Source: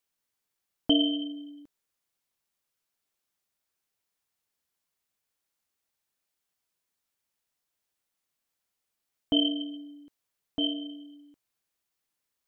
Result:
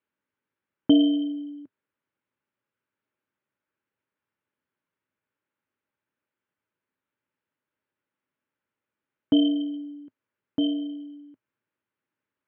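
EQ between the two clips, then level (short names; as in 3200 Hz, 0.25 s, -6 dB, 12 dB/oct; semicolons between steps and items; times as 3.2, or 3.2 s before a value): Butterworth band-stop 710 Hz, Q 3.8; speaker cabinet 110–2700 Hz, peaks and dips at 110 Hz +5 dB, 260 Hz +5 dB, 360 Hz +3 dB, 690 Hz +9 dB, 1500 Hz +5 dB; low shelf 470 Hz +5 dB; 0.0 dB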